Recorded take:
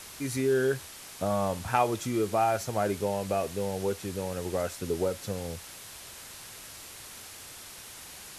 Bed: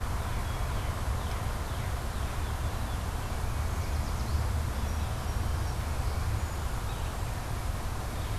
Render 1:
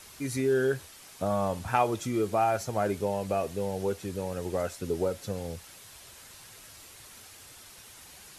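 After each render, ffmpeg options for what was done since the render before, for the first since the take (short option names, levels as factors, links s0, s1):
-af "afftdn=nr=6:nf=-46"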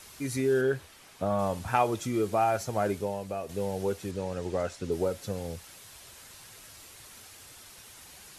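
-filter_complex "[0:a]asettb=1/sr,asplit=3[s0][s1][s2];[s0]atrim=end=0.614[s3];[s1]atrim=start=0.61:end=1.39,asetpts=PTS-STARTPTS,afade=t=in:d=0.004:c=qsin,afade=t=out:st=0.776:d=0.004:c=qsin,acrossover=split=3800[s4][s5];[s5]acompressor=threshold=0.00178:ratio=4:attack=1:release=60[s6];[s4][s6]amix=inputs=2:normalize=0[s7];[s2]atrim=start=1.386[s8];[s3][s7]acrossfade=d=0.004:c1=hsin:c2=qsin[s9];[s9][s8]acrossfade=d=0.004:c1=qsin:c2=hsin,asettb=1/sr,asplit=3[s10][s11][s12];[s10]atrim=end=4.114[s13];[s11]atrim=start=4.11:end=4.92,asetpts=PTS-STARTPTS,afade=t=in:d=0.004:c=qsin,afade=t=out:st=0.806:d=0.004:c=qsin,lowpass=7300[s14];[s12]atrim=start=4.916[s15];[s13][s14]acrossfade=d=0.004:c1=hsin:c2=qsin[s16];[s16][s15]acrossfade=d=0.004:c1=qsin:c2=hsin,asplit=2[s17][s18];[s17]atrim=end=3.49,asetpts=PTS-STARTPTS,afade=t=out:st=2.91:d=0.58:c=qua:silence=0.473151[s19];[s18]atrim=start=3.49,asetpts=PTS-STARTPTS,afade=t=in:d=0.004:c=hsin:silence=0.473151[s20];[s19][s20]concat=n=2:v=0:a=1"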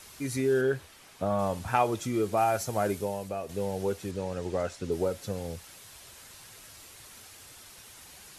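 -filter_complex "[0:a]asettb=1/sr,asplit=3[s0][s1][s2];[s0]atrim=end=2.374[s3];[s1]atrim=start=2.37:end=3.29,asetpts=PTS-STARTPTS,afade=t=in:d=0.004:c=qsin,afade=t=out:st=0.916:d=0.004:c=qsin,highshelf=f=7300:g=7.5[s4];[s2]atrim=start=3.286[s5];[s3][s4]acrossfade=d=0.004:c1=hsin:c2=qsin[s6];[s6][s5]acrossfade=d=0.004:c1=qsin:c2=hsin"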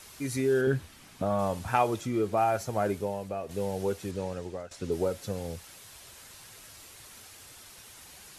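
-filter_complex "[0:a]asettb=1/sr,asplit=3[s0][s1][s2];[s0]atrim=end=0.674[s3];[s1]atrim=start=0.67:end=1.22,asetpts=PTS-STARTPTS,afade=t=in:d=0.004:c=qsin,afade=t=out:st=0.546:d=0.004:c=qsin,lowshelf=f=330:t=q:w=1.5:g=7[s4];[s2]atrim=start=1.216[s5];[s3][s4]acrossfade=d=0.004:c1=hsin:c2=qsin[s6];[s6][s5]acrossfade=d=0.004:c1=qsin:c2=hsin,asettb=1/sr,asplit=3[s7][s8][s9];[s7]atrim=end=2.014[s10];[s8]atrim=start=2.01:end=3.51,asetpts=PTS-STARTPTS,afade=t=in:d=0.004:c=qsin,afade=t=out:st=1.496:d=0.004:c=qsin,highshelf=f=4200:g=-7.5[s11];[s9]atrim=start=3.506[s12];[s10][s11]acrossfade=d=0.004:c1=hsin:c2=qsin[s13];[s13][s12]acrossfade=d=0.004:c1=qsin:c2=hsin,asplit=2[s14][s15];[s14]atrim=end=4.71,asetpts=PTS-STARTPTS,afade=t=out:st=4.25:d=0.46:silence=0.141254[s16];[s15]atrim=start=4.71,asetpts=PTS-STARTPTS,afade=t=in:d=0.004:c=hsin:silence=0.141254[s17];[s16][s17]concat=n=2:v=0:a=1"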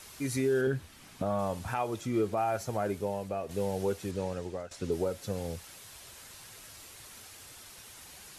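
-af "alimiter=limit=0.1:level=0:latency=1:release=359"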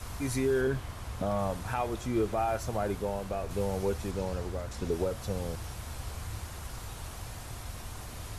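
-filter_complex "[1:a]volume=0.376[s0];[0:a][s0]amix=inputs=2:normalize=0"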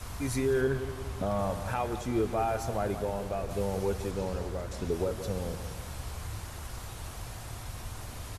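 -filter_complex "[0:a]asplit=2[s0][s1];[s1]adelay=175,lowpass=f=2000:p=1,volume=0.316,asplit=2[s2][s3];[s3]adelay=175,lowpass=f=2000:p=1,volume=0.53,asplit=2[s4][s5];[s5]adelay=175,lowpass=f=2000:p=1,volume=0.53,asplit=2[s6][s7];[s7]adelay=175,lowpass=f=2000:p=1,volume=0.53,asplit=2[s8][s9];[s9]adelay=175,lowpass=f=2000:p=1,volume=0.53,asplit=2[s10][s11];[s11]adelay=175,lowpass=f=2000:p=1,volume=0.53[s12];[s0][s2][s4][s6][s8][s10][s12]amix=inputs=7:normalize=0"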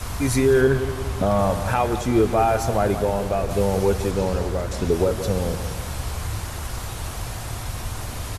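-af "volume=3.35"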